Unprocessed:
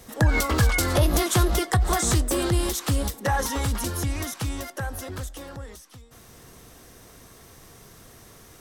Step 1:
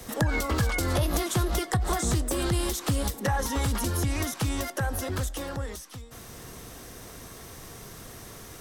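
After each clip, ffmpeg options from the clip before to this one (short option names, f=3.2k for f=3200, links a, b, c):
-filter_complex "[0:a]acrossover=split=180|760[a][b][c];[a]acompressor=threshold=-32dB:ratio=4[d];[b]acompressor=threshold=-37dB:ratio=4[e];[c]acompressor=threshold=-37dB:ratio=4[f];[d][e][f]amix=inputs=3:normalize=0,volume=5dB"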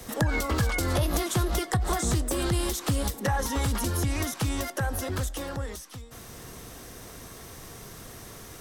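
-af anull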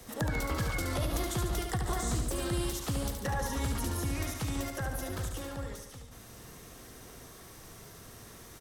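-af "aecho=1:1:72|144|216|288|360|432|504|576:0.531|0.313|0.185|0.109|0.0643|0.038|0.0224|0.0132,volume=-7.5dB"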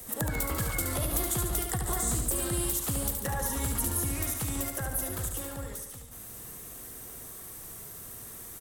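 -af "aexciter=amount=4.5:drive=4.1:freq=7.5k"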